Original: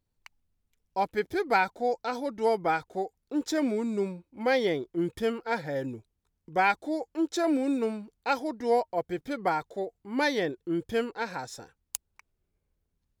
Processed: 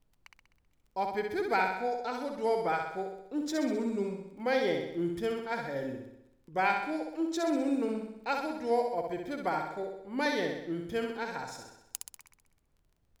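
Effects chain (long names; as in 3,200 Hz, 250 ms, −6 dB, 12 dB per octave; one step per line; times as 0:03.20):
flutter between parallel walls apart 11 metres, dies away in 0.81 s
background noise brown −65 dBFS
surface crackle 16 per second −47 dBFS
level −5 dB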